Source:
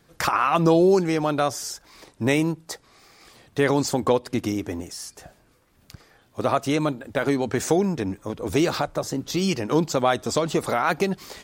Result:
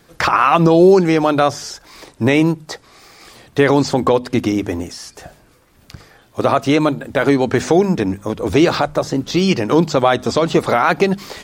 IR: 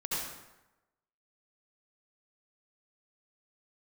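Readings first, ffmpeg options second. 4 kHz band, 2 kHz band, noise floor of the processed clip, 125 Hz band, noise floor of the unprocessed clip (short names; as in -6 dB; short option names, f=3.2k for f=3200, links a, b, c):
+6.5 dB, +8.0 dB, -51 dBFS, +7.5 dB, -60 dBFS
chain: -filter_complex "[0:a]bandreject=f=50:t=h:w=6,bandreject=f=100:t=h:w=6,bandreject=f=150:t=h:w=6,bandreject=f=200:t=h:w=6,bandreject=f=250:t=h:w=6,acrossover=split=5300[a][b];[b]acompressor=threshold=-50dB:ratio=4:attack=1:release=60[c];[a][c]amix=inputs=2:normalize=0,alimiter=level_in=10dB:limit=-1dB:release=50:level=0:latency=1,volume=-1dB"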